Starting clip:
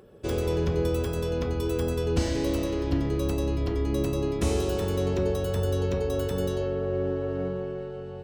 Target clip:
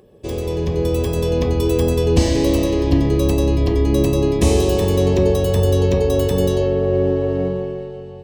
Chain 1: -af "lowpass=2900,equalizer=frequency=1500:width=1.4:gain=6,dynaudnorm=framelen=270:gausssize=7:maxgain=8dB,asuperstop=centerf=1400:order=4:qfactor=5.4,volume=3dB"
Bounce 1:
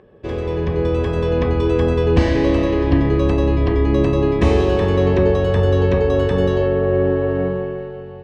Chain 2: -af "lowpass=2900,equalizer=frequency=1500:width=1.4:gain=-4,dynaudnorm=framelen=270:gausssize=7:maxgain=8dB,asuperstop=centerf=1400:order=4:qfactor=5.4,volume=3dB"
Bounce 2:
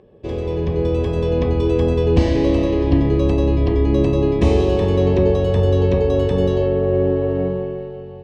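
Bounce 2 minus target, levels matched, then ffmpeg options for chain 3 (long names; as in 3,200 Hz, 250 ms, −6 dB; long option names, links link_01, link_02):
4,000 Hz band −5.5 dB
-af "equalizer=frequency=1500:width=1.4:gain=-4,dynaudnorm=framelen=270:gausssize=7:maxgain=8dB,asuperstop=centerf=1400:order=4:qfactor=5.4,volume=3dB"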